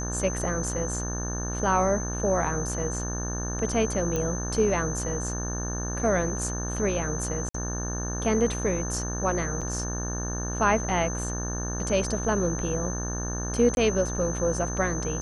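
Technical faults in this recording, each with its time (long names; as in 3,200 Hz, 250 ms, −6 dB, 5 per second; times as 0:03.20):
mains buzz 60 Hz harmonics 30 −32 dBFS
whistle 6,200 Hz −34 dBFS
0:04.16: click −15 dBFS
0:07.49–0:07.54: drop-out 54 ms
0:09.61–0:09.62: drop-out 6 ms
0:13.75–0:13.77: drop-out 21 ms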